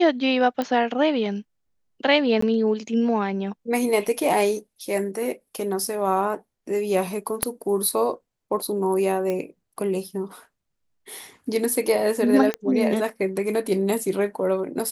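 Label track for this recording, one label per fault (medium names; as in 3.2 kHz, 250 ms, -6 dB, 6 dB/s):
0.620000	0.620000	pop -13 dBFS
2.410000	2.420000	dropout 14 ms
7.430000	7.430000	pop -6 dBFS
9.300000	9.300000	pop -15 dBFS
12.540000	12.540000	pop -11 dBFS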